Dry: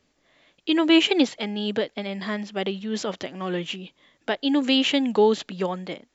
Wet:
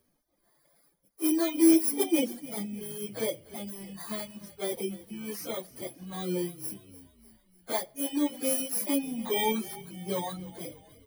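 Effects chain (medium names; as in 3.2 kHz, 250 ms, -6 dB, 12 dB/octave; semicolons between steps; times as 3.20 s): bit-reversed sample order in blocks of 16 samples; dynamic bell 1.5 kHz, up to -6 dB, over -50 dBFS, Q 4; plain phase-vocoder stretch 1.8×; reverberation RT60 0.80 s, pre-delay 6 ms, DRR 10 dB; reverb removal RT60 1.7 s; frequency-shifting echo 299 ms, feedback 54%, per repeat -43 Hz, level -18 dB; trim -3 dB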